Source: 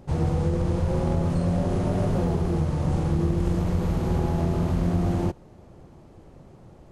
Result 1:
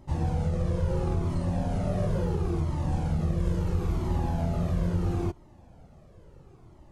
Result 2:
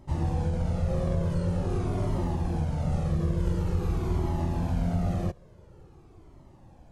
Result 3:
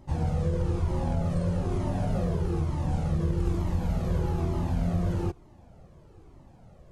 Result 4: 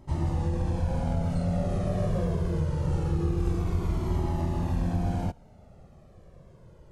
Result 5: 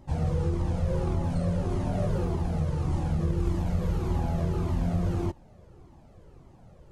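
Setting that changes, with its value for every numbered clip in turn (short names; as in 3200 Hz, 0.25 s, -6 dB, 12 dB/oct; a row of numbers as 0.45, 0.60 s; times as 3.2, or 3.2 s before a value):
cascading flanger, rate: 0.74, 0.47, 1.1, 0.24, 1.7 Hz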